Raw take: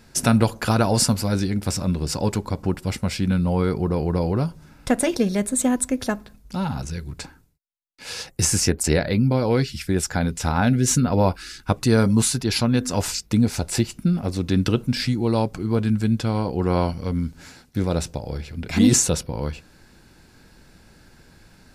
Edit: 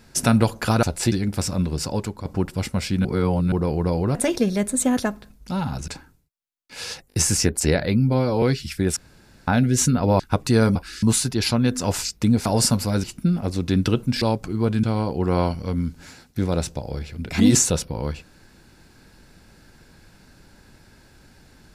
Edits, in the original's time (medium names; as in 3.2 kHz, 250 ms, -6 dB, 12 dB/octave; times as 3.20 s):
0.83–1.41 s: swap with 13.55–13.84 s
2.01–2.54 s: fade out, to -8 dB
3.34–3.81 s: reverse
4.44–4.94 s: delete
5.76–6.01 s: delete
6.92–7.17 s: delete
8.37 s: stutter 0.02 s, 4 plays
9.25–9.52 s: stretch 1.5×
10.06–10.57 s: room tone
11.29–11.56 s: move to 12.12 s
15.02–15.32 s: delete
15.94–16.22 s: delete